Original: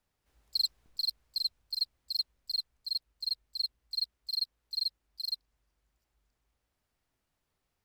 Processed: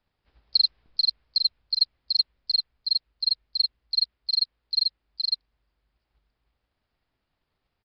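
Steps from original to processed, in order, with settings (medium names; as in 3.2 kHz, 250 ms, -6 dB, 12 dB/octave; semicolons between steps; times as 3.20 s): resampled via 11.025 kHz; transient shaper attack +7 dB, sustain 0 dB; dynamic bell 2.2 kHz, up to +3 dB, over -40 dBFS, Q 1.1; trim +3 dB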